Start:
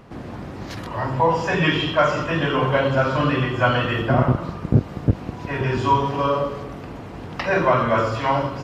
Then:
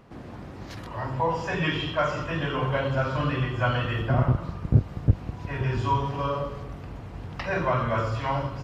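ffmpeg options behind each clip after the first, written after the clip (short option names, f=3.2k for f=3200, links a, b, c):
-af "asubboost=boost=3:cutoff=140,volume=-7dB"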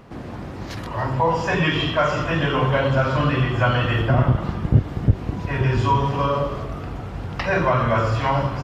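-filter_complex "[0:a]asplit=2[a][b];[b]alimiter=limit=-18dB:level=0:latency=1:release=114,volume=2.5dB[c];[a][c]amix=inputs=2:normalize=0,asplit=7[d][e][f][g][h][i][j];[e]adelay=282,afreqshift=85,volume=-18.5dB[k];[f]adelay=564,afreqshift=170,volume=-22.7dB[l];[g]adelay=846,afreqshift=255,volume=-26.8dB[m];[h]adelay=1128,afreqshift=340,volume=-31dB[n];[i]adelay=1410,afreqshift=425,volume=-35.1dB[o];[j]adelay=1692,afreqshift=510,volume=-39.3dB[p];[d][k][l][m][n][o][p]amix=inputs=7:normalize=0"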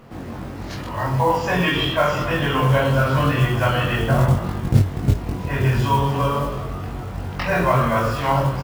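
-filter_complex "[0:a]flanger=delay=8.2:depth=9.5:regen=66:speed=0.86:shape=sinusoidal,acrusher=bits=6:mode=log:mix=0:aa=0.000001,asplit=2[a][b];[b]adelay=22,volume=-2dB[c];[a][c]amix=inputs=2:normalize=0,volume=3dB"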